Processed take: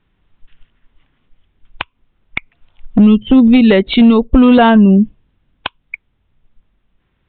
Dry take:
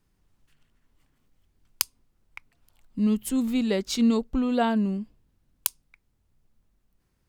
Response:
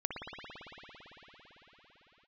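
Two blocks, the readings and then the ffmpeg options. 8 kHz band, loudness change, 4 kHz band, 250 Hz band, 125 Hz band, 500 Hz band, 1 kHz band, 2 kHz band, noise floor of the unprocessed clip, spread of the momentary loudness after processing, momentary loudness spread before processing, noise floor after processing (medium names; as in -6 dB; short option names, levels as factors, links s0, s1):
under -40 dB, +16.5 dB, +12.0 dB, +16.5 dB, no reading, +15.5 dB, +15.5 dB, +18.0 dB, -72 dBFS, 20 LU, 8 LU, -64 dBFS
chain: -filter_complex "[0:a]crystalizer=i=6.5:c=0,acrossover=split=3000[s0][s1];[s1]acompressor=threshold=0.0282:ratio=4:attack=1:release=60[s2];[s0][s2]amix=inputs=2:normalize=0,afftdn=nr=24:nf=-36,acompressor=threshold=0.0158:ratio=10,aresample=8000,aeval=exprs='clip(val(0),-1,0.0168)':c=same,aresample=44100,aemphasis=mode=reproduction:type=75kf,apsyclip=50.1,volume=0.794"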